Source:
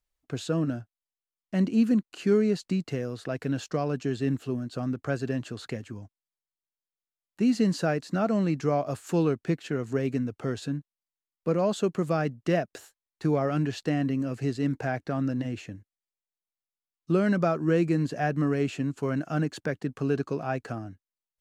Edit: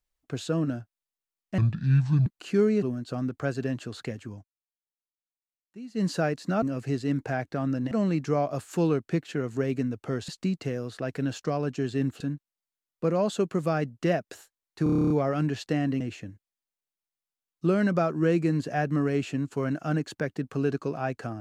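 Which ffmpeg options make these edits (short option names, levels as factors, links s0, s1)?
-filter_complex "[0:a]asplit=20[s0][s1][s2][s3][s4][s5][s6][s7][s8][s9][s10][s11][s12][s13][s14][s15][s16][s17][s18][s19];[s0]atrim=end=1.584[s20];[s1]atrim=start=1.58:end=1.99,asetpts=PTS-STARTPTS,asetrate=26460,aresample=44100[s21];[s2]atrim=start=1.986:end=2.552[s22];[s3]atrim=start=4.468:end=6.12,asetpts=PTS-STARTPTS,afade=t=out:st=1.522:d=0.13:c=qsin:silence=0.125893[s23];[s4]atrim=start=6.12:end=7.59,asetpts=PTS-STARTPTS,volume=0.126[s24];[s5]atrim=start=7.59:end=8.272,asetpts=PTS-STARTPTS,afade=t=in:d=0.13:c=qsin:silence=0.125893[s25];[s6]atrim=start=14.168:end=15.462[s26];[s7]atrim=start=8.268:end=10.642[s27];[s8]atrim=start=2.548:end=4.472[s28];[s9]atrim=start=10.638:end=13.302[s29];[s10]atrim=start=13.268:end=13.302[s30];[s11]atrim=start=13.268:end=13.302[s31];[s12]atrim=start=13.268:end=13.302[s32];[s13]atrim=start=13.268:end=13.302[s33];[s14]atrim=start=13.268:end=13.302[s34];[s15]atrim=start=13.268:end=13.302[s35];[s16]atrim=start=13.268:end=13.302[s36];[s17]atrim=start=13.268:end=13.302[s37];[s18]atrim=start=13.268:end=14.172[s38];[s19]atrim=start=15.458[s39];[s20][s21]acrossfade=d=0.004:c1=hsin:c2=hsin[s40];[s40][s22]acrossfade=d=0.004:c1=hsin:c2=hsin[s41];[s23][s24][s25]concat=n=3:v=0:a=1[s42];[s41][s42]acrossfade=d=0.004:c1=hsin:c2=hsin[s43];[s43][s26]acrossfade=d=0.004:c1=hsin:c2=hsin[s44];[s44][s27]acrossfade=d=0.004:c1=hsin:c2=hsin[s45];[s45][s28]acrossfade=d=0.004:c1=hsin:c2=hsin[s46];[s46][s29]acrossfade=d=0.004:c1=hsin:c2=hsin[s47];[s47][s30]acrossfade=d=0.004:c1=hsin:c2=hsin[s48];[s48][s31]acrossfade=d=0.004:c1=hsin:c2=hsin[s49];[s49][s32]acrossfade=d=0.004:c1=hsin:c2=hsin[s50];[s50][s33]acrossfade=d=0.004:c1=hsin:c2=hsin[s51];[s51][s34]acrossfade=d=0.004:c1=hsin:c2=hsin[s52];[s52][s35]acrossfade=d=0.004:c1=hsin:c2=hsin[s53];[s53][s36]acrossfade=d=0.004:c1=hsin:c2=hsin[s54];[s54][s37]acrossfade=d=0.004:c1=hsin:c2=hsin[s55];[s55][s38]acrossfade=d=0.004:c1=hsin:c2=hsin[s56];[s56][s39]acrossfade=d=0.004:c1=hsin:c2=hsin"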